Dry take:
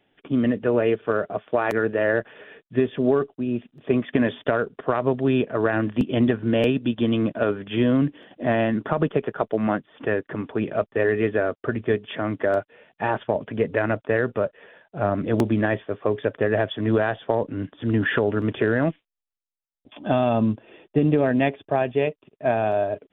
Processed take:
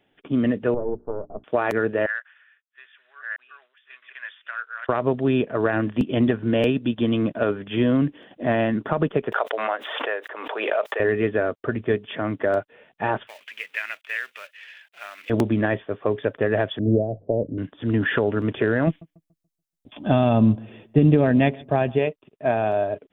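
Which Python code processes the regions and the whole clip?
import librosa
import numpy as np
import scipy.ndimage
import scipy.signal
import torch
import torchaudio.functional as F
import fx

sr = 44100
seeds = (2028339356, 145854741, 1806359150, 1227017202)

y = fx.chain(x, sr, fx.halfwave_gain(db=-12.0),
    fx.gaussian_blur(sigma=11.0),
    fx.hum_notches(base_hz=60, count=6), at=(0.74, 1.44))
y = fx.chain(y, sr, fx.reverse_delay(ms=651, wet_db=-2),
    fx.ladder_highpass(hz=1300.0, resonance_pct=50),
    fx.band_widen(depth_pct=70), at=(2.06, 4.89))
y = fx.chain(y, sr, fx.highpass(hz=530.0, slope=24),
    fx.pre_swell(db_per_s=37.0), at=(9.32, 11.0))
y = fx.chain(y, sr, fx.law_mismatch(coded='mu'),
    fx.highpass_res(hz=2400.0, q=2.4), at=(13.27, 15.3))
y = fx.chain(y, sr, fx.ellip_lowpass(hz=620.0, order=4, stop_db=70),
    fx.low_shelf(hz=130.0, db=8.0),
    fx.hum_notches(base_hz=50, count=3), at=(16.79, 17.58))
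y = fx.chain(y, sr, fx.bass_treble(bass_db=7, treble_db=6),
    fx.echo_filtered(ms=143, feedback_pct=33, hz=1700.0, wet_db=-23), at=(18.87, 21.99))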